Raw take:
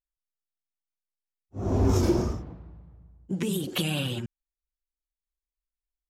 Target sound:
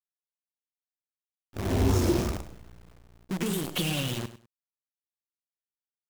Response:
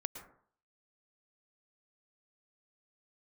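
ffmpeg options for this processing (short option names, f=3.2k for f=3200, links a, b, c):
-filter_complex "[0:a]acrusher=bits=6:dc=4:mix=0:aa=0.000001,asplit=2[a][b];[b]aecho=0:1:100|200:0.2|0.0439[c];[a][c]amix=inputs=2:normalize=0,volume=-1.5dB"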